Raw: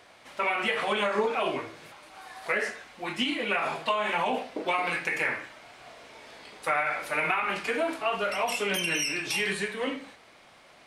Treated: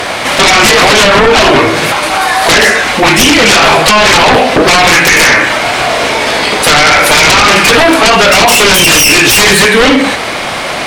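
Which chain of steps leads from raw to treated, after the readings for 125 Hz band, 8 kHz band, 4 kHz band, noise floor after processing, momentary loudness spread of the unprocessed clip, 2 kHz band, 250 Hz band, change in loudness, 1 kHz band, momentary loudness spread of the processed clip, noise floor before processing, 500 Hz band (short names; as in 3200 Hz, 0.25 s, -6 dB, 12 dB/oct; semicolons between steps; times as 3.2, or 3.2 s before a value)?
+28.5 dB, +30.0 dB, +27.5 dB, -16 dBFS, 20 LU, +23.5 dB, +25.0 dB, +23.5 dB, +23.0 dB, 7 LU, -55 dBFS, +22.5 dB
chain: compressor 3:1, threshold -30 dBFS, peak gain reduction 7 dB; sine folder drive 16 dB, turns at -16.5 dBFS; maximiser +20.5 dB; gain -1 dB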